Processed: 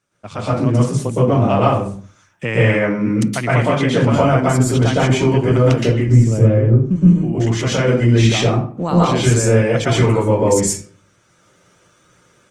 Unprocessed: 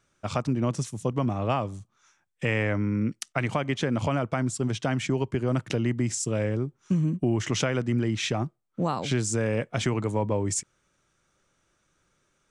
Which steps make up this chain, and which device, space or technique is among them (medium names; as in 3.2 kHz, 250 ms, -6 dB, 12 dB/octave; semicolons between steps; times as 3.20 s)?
5.93–6.96 s: tilt EQ -3.5 dB/octave; far-field microphone of a smart speaker (reverberation RT60 0.45 s, pre-delay 113 ms, DRR -6 dB; high-pass 100 Hz 12 dB/octave; level rider gain up to 11 dB; trim -1 dB; Opus 24 kbps 48 kHz)